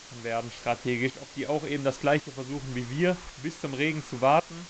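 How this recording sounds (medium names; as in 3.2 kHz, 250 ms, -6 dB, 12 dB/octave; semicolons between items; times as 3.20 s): tremolo saw up 0.91 Hz, depth 80%; a quantiser's noise floor 8-bit, dither triangular; µ-law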